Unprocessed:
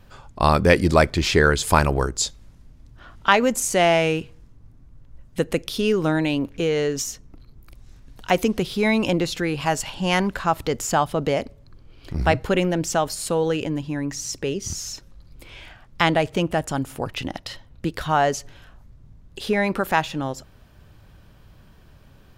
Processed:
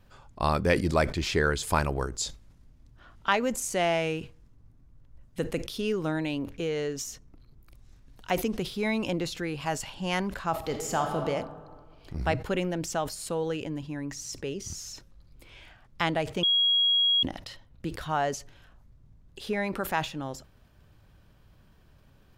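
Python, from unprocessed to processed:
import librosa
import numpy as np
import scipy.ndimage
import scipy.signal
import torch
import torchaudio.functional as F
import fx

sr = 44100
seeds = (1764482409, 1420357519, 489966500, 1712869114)

y = fx.reverb_throw(x, sr, start_s=10.51, length_s=0.75, rt60_s=1.7, drr_db=3.5)
y = fx.edit(y, sr, fx.bleep(start_s=16.43, length_s=0.8, hz=3300.0, db=-11.5), tone=tone)
y = fx.sustainer(y, sr, db_per_s=140.0)
y = y * 10.0 ** (-8.5 / 20.0)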